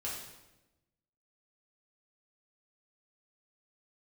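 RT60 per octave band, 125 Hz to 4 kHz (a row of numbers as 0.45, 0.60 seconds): 1.3, 1.3, 1.1, 0.90, 0.90, 0.80 seconds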